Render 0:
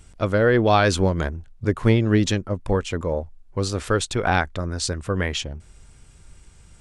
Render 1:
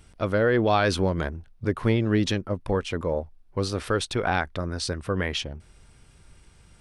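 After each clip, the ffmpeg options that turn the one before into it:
-filter_complex "[0:a]lowshelf=f=88:g=-6,asplit=2[s0][s1];[s1]alimiter=limit=0.158:level=0:latency=1,volume=0.891[s2];[s0][s2]amix=inputs=2:normalize=0,equalizer=f=7200:w=3.2:g=-10,volume=0.473"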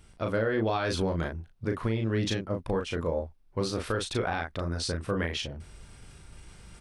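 -filter_complex "[0:a]areverse,acompressor=mode=upward:threshold=0.0141:ratio=2.5,areverse,asplit=2[s0][s1];[s1]adelay=36,volume=0.596[s2];[s0][s2]amix=inputs=2:normalize=0,alimiter=limit=0.178:level=0:latency=1:release=197,volume=0.668"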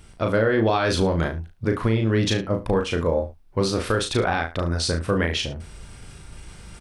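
-af "aecho=1:1:72:0.168,volume=2.37"

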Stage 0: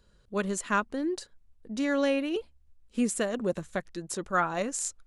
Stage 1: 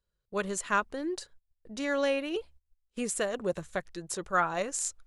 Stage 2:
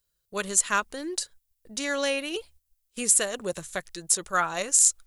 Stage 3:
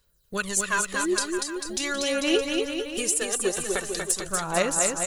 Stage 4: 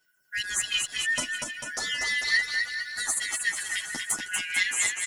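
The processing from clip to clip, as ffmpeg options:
-af "agate=range=0.1:threshold=0.00282:ratio=16:detection=peak,equalizer=f=240:w=2:g=-9"
-af "crystalizer=i=5:c=0,volume=0.891"
-af "acompressor=threshold=0.0251:ratio=4,aphaser=in_gain=1:out_gain=1:delay=2.6:decay=0.64:speed=0.43:type=sinusoidal,aecho=1:1:240|444|617.4|764.8|890.1:0.631|0.398|0.251|0.158|0.1,volume=1.88"
-filter_complex "[0:a]afftfilt=real='real(if(lt(b,272),68*(eq(floor(b/68),0)*3+eq(floor(b/68),1)*0+eq(floor(b/68),2)*1+eq(floor(b/68),3)*2)+mod(b,68),b),0)':imag='imag(if(lt(b,272),68*(eq(floor(b/68),0)*3+eq(floor(b/68),1)*0+eq(floor(b/68),2)*1+eq(floor(b/68),3)*2)+mod(b,68),b),0)':win_size=2048:overlap=0.75,asplit=2[s0][s1];[s1]adelay=9.6,afreqshift=-0.74[s2];[s0][s2]amix=inputs=2:normalize=1"

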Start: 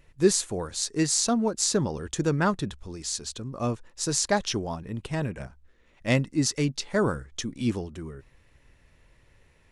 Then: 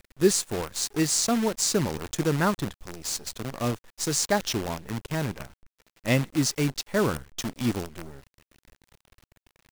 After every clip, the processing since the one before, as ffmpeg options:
-af "acrusher=bits=6:dc=4:mix=0:aa=0.000001"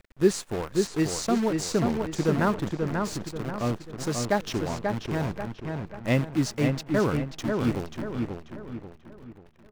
-filter_complex "[0:a]highshelf=f=3900:g=-12,asplit=2[s0][s1];[s1]adelay=537,lowpass=f=3000:p=1,volume=0.631,asplit=2[s2][s3];[s3]adelay=537,lowpass=f=3000:p=1,volume=0.42,asplit=2[s4][s5];[s5]adelay=537,lowpass=f=3000:p=1,volume=0.42,asplit=2[s6][s7];[s7]adelay=537,lowpass=f=3000:p=1,volume=0.42,asplit=2[s8][s9];[s9]adelay=537,lowpass=f=3000:p=1,volume=0.42[s10];[s2][s4][s6][s8][s10]amix=inputs=5:normalize=0[s11];[s0][s11]amix=inputs=2:normalize=0"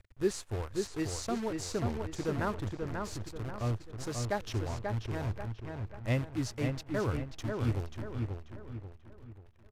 -af "lowshelf=f=130:t=q:w=3:g=6.5,aresample=32000,aresample=44100,volume=0.398"

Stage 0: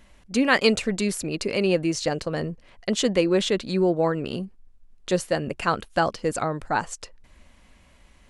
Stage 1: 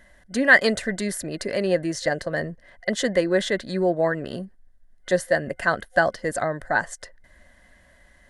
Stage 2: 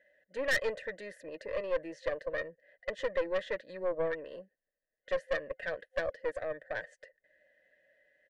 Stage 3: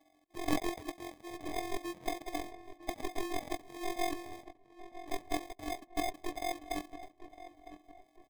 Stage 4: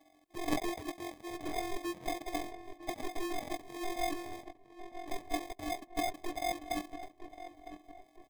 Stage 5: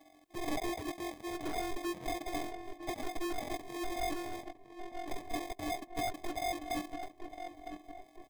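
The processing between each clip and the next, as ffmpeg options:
-af "superequalizer=8b=2.24:11b=3.55:12b=0.501:16b=1.58,volume=0.75"
-filter_complex "[0:a]asplit=3[s0][s1][s2];[s0]bandpass=f=530:t=q:w=8,volume=1[s3];[s1]bandpass=f=1840:t=q:w=8,volume=0.501[s4];[s2]bandpass=f=2480:t=q:w=8,volume=0.355[s5];[s3][s4][s5]amix=inputs=3:normalize=0,aecho=1:1:6.5:0.42,aeval=exprs='(tanh(17.8*val(0)+0.5)-tanh(0.5))/17.8':c=same"
-filter_complex "[0:a]afftfilt=real='hypot(re,im)*cos(PI*b)':imag='0':win_size=512:overlap=0.75,acrusher=samples=31:mix=1:aa=0.000001,asplit=2[s0][s1];[s1]adelay=957,lowpass=f=2000:p=1,volume=0.224,asplit=2[s2][s3];[s3]adelay=957,lowpass=f=2000:p=1,volume=0.4,asplit=2[s4][s5];[s5]adelay=957,lowpass=f=2000:p=1,volume=0.4,asplit=2[s6][s7];[s7]adelay=957,lowpass=f=2000:p=1,volume=0.4[s8];[s0][s2][s4][s6][s8]amix=inputs=5:normalize=0,volume=1.5"
-af "aeval=exprs='(tanh(17.8*val(0)+0.75)-tanh(0.75))/17.8':c=same,volume=2.51"
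-af "asoftclip=type=tanh:threshold=0.0178,volume=1.58"

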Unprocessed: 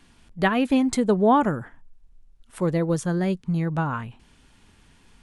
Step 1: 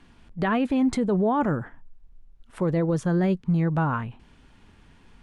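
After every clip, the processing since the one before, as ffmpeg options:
-af "lowpass=f=2300:p=1,alimiter=limit=0.119:level=0:latency=1:release=17,volume=1.33"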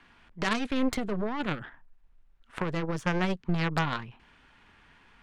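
-filter_complex "[0:a]acrossover=split=340|3000[s0][s1][s2];[s1]acompressor=threshold=0.0141:ratio=4[s3];[s0][s3][s2]amix=inputs=3:normalize=0,equalizer=f=1700:t=o:w=3:g=14.5,aeval=exprs='0.316*(cos(1*acos(clip(val(0)/0.316,-1,1)))-cos(1*PI/2))+0.0631*(cos(3*acos(clip(val(0)/0.316,-1,1)))-cos(3*PI/2))+0.0501*(cos(6*acos(clip(val(0)/0.316,-1,1)))-cos(6*PI/2))+0.0158*(cos(8*acos(clip(val(0)/0.316,-1,1)))-cos(8*PI/2))':c=same,volume=0.75"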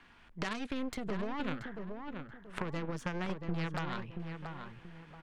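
-filter_complex "[0:a]acompressor=threshold=0.0282:ratio=6,asplit=2[s0][s1];[s1]adelay=681,lowpass=f=2000:p=1,volume=0.531,asplit=2[s2][s3];[s3]adelay=681,lowpass=f=2000:p=1,volume=0.33,asplit=2[s4][s5];[s5]adelay=681,lowpass=f=2000:p=1,volume=0.33,asplit=2[s6][s7];[s7]adelay=681,lowpass=f=2000:p=1,volume=0.33[s8];[s2][s4][s6][s8]amix=inputs=4:normalize=0[s9];[s0][s9]amix=inputs=2:normalize=0,volume=0.841"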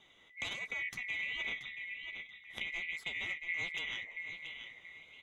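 -af "afftfilt=real='real(if(lt(b,920),b+92*(1-2*mod(floor(b/92),2)),b),0)':imag='imag(if(lt(b,920),b+92*(1-2*mod(floor(b/92),2)),b),0)':win_size=2048:overlap=0.75,flanger=delay=4.3:depth=9.7:regen=-39:speed=1.3:shape=sinusoidal"

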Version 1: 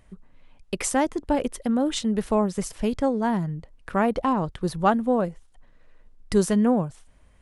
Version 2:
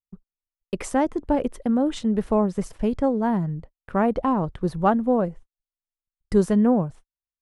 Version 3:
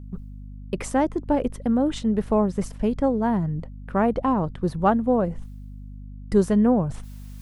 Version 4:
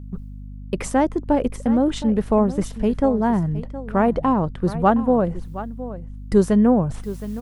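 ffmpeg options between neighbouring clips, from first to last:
-af "highshelf=f=2100:g=-12,agate=range=0.00282:threshold=0.00891:ratio=16:detection=peak,volume=1.26"
-af "areverse,acompressor=mode=upward:threshold=0.0631:ratio=2.5,areverse,aeval=exprs='val(0)+0.0141*(sin(2*PI*50*n/s)+sin(2*PI*2*50*n/s)/2+sin(2*PI*3*50*n/s)/3+sin(2*PI*4*50*n/s)/4+sin(2*PI*5*50*n/s)/5)':c=same"
-af "aecho=1:1:717:0.188,volume=1.41"

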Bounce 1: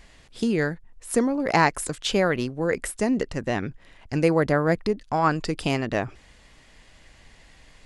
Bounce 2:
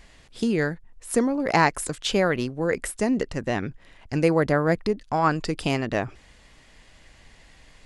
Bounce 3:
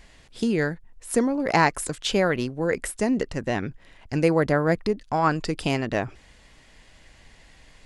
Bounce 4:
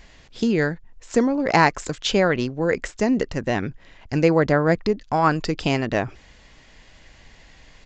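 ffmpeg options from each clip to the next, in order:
-af anull
-af "bandreject=f=1200:w=25"
-af "aresample=16000,aresample=44100,volume=1.41"

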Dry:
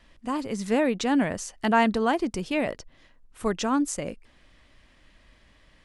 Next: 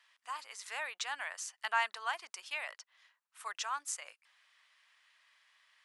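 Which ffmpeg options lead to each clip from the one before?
-af "highpass=f=1000:w=0.5412,highpass=f=1000:w=1.3066,volume=0.531"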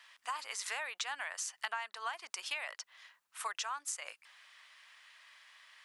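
-af "acompressor=threshold=0.00631:ratio=12,volume=2.82"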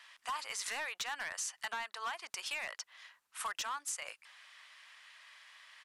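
-af "volume=56.2,asoftclip=hard,volume=0.0178,aresample=32000,aresample=44100,volume=1.26"

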